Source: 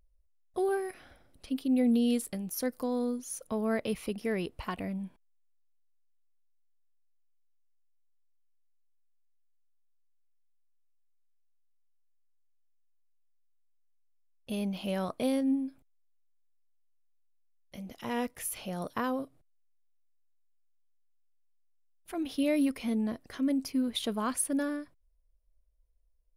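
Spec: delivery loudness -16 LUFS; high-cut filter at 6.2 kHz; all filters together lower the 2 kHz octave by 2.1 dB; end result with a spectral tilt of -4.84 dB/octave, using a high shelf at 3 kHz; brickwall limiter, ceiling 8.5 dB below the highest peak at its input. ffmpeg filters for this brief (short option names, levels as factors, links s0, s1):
-af "lowpass=6200,equalizer=f=2000:t=o:g=-5,highshelf=f=3000:g=6.5,volume=8.91,alimiter=limit=0.473:level=0:latency=1"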